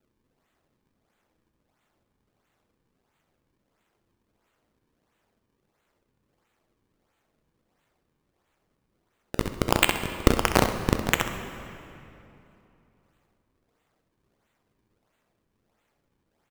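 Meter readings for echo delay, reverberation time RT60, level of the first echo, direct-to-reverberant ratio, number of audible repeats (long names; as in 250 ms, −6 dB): 65 ms, 2.9 s, −10.0 dB, 5.5 dB, 1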